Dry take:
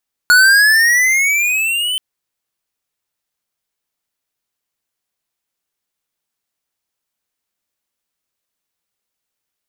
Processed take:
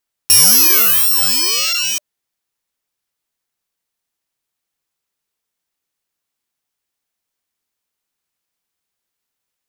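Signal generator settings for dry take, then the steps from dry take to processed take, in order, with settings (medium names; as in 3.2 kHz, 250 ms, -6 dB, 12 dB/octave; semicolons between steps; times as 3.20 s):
gliding synth tone square, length 1.68 s, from 1.45 kHz, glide +13 st, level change -11 dB, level -7.5 dB
bit-reversed sample order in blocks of 64 samples; band-stop 600 Hz, Q 20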